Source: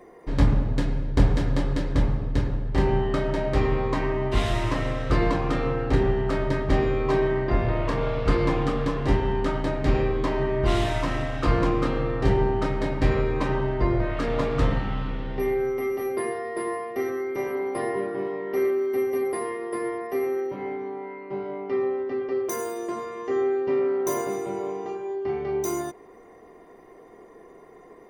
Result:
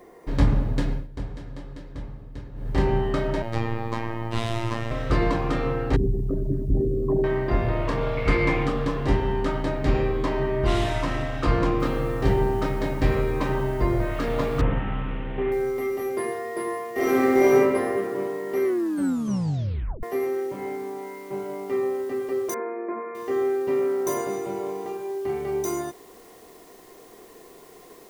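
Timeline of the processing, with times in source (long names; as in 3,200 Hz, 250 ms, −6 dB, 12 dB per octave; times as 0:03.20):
0:00.92–0:02.70: duck −14 dB, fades 0.16 s
0:03.42–0:04.91: phases set to zero 114 Hz
0:05.96–0:07.24: spectral envelope exaggerated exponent 3
0:08.17–0:08.67: parametric band 2,200 Hz +12.5 dB 0.35 octaves
0:11.80: noise floor change −69 dB −55 dB
0:14.61–0:15.52: linear delta modulator 16 kbit/s, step −36.5 dBFS
0:16.93–0:17.54: thrown reverb, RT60 1.9 s, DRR −11.5 dB
0:18.64: tape stop 1.39 s
0:22.54–0:23.15: linear-phase brick-wall band-pass 190–2,500 Hz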